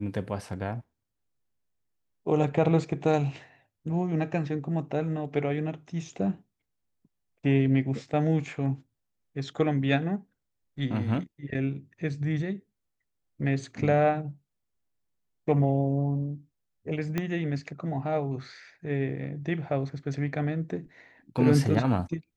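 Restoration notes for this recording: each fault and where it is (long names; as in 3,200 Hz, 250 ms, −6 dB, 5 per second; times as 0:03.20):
0:17.18: click −15 dBFS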